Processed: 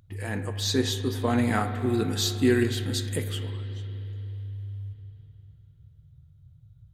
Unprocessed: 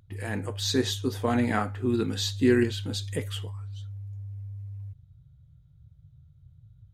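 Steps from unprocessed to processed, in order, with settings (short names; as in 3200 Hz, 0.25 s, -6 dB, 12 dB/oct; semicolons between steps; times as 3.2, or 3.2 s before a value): high shelf 8000 Hz +2.5 dB, from 1.38 s +11.5 dB, from 3.31 s +2.5 dB; spring tank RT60 3.5 s, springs 31/42/50 ms, chirp 45 ms, DRR 8.5 dB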